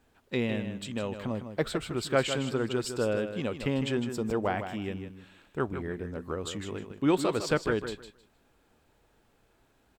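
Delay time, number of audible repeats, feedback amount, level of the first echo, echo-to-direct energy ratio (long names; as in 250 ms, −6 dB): 156 ms, 2, 20%, −9.0 dB, −9.0 dB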